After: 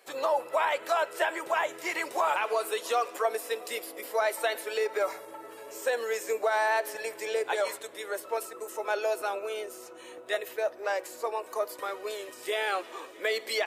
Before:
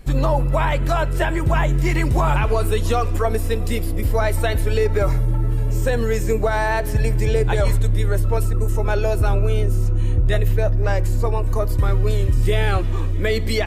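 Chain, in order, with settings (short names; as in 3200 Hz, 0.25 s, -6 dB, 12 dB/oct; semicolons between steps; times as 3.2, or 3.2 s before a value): HPF 470 Hz 24 dB/oct; gain -4.5 dB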